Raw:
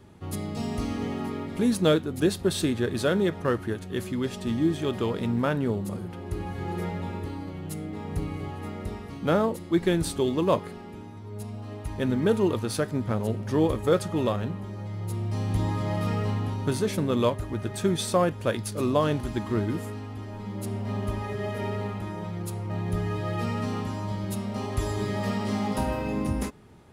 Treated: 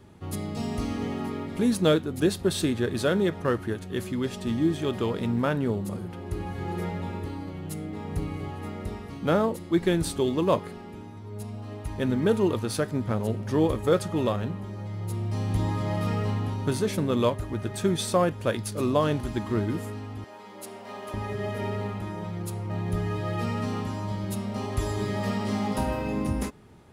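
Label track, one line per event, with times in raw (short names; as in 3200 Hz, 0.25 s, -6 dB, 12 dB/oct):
20.240000	21.140000	HPF 490 Hz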